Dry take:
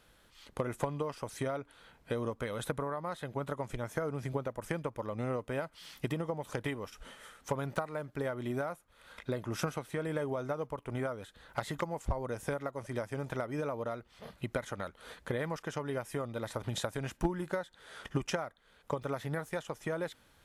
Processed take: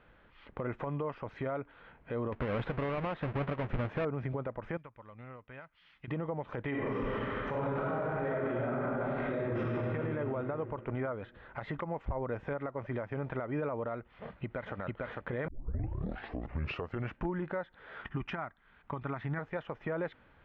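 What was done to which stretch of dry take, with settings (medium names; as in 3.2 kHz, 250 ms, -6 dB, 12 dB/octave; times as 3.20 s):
2.32–4.05 s: square wave that keeps the level
4.77–6.08 s: amplifier tone stack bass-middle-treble 5-5-5
6.70–9.59 s: reverb throw, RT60 2.6 s, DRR -11.5 dB
13.99–14.76 s: echo throw 450 ms, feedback 35%, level -3.5 dB
15.48 s: tape start 1.72 s
18.01–19.39 s: peaking EQ 510 Hz -13.5 dB 0.53 oct
whole clip: low-pass 2.5 kHz 24 dB/octave; peak limiter -30 dBFS; trim +3.5 dB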